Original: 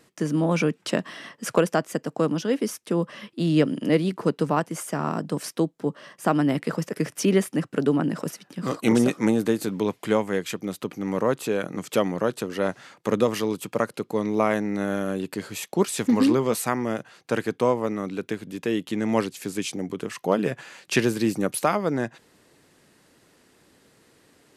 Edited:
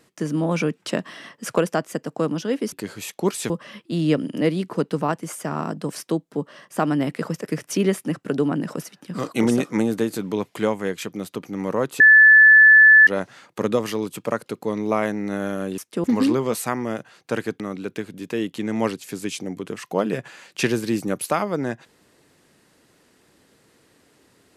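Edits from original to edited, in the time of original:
2.72–2.98 swap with 15.26–16.04
11.48–12.55 bleep 1740 Hz -7 dBFS
17.6–17.93 cut

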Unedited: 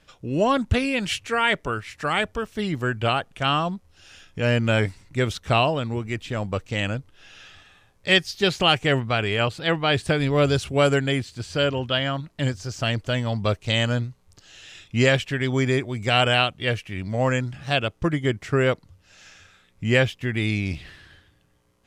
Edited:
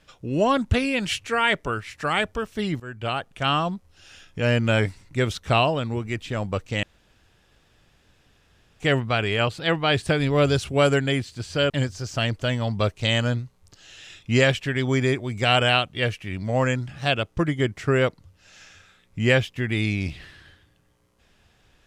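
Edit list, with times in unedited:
2.8–3.67 fade in equal-power, from -18 dB
6.83–8.8 room tone
11.7–12.35 cut

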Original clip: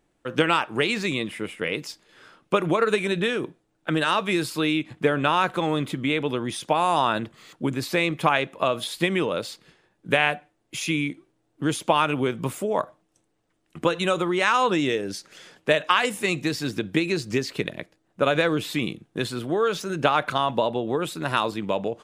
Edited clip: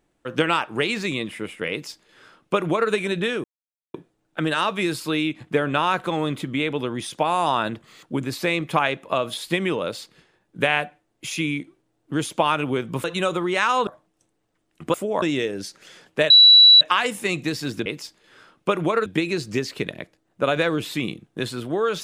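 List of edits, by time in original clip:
1.71–2.91 copy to 16.85
3.44 insert silence 0.50 s
12.54–12.82 swap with 13.89–14.72
15.8 add tone 3930 Hz -7 dBFS 0.51 s

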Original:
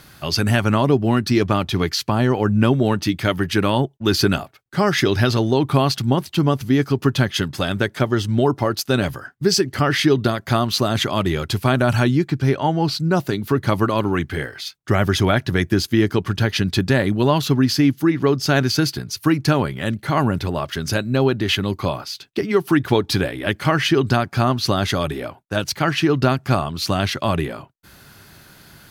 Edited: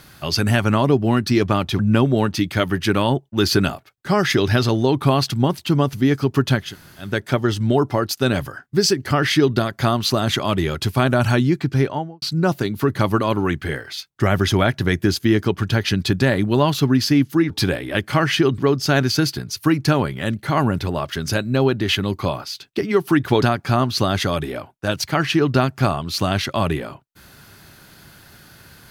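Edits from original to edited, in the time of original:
1.79–2.47 cut
7.33–7.76 room tone, crossfade 0.24 s
12.47–12.9 studio fade out
23.02–24.1 move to 18.18

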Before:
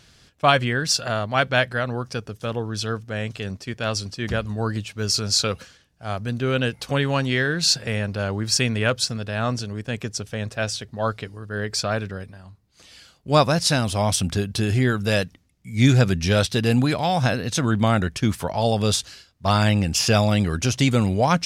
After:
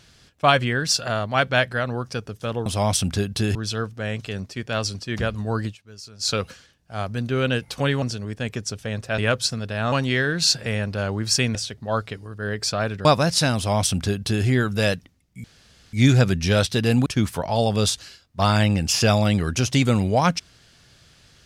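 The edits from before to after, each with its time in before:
4.76–5.43 dip -18.5 dB, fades 0.13 s
7.13–8.76 swap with 9.5–10.66
12.16–13.34 cut
13.85–14.74 copy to 2.66
15.73 insert room tone 0.49 s
16.86–18.12 cut

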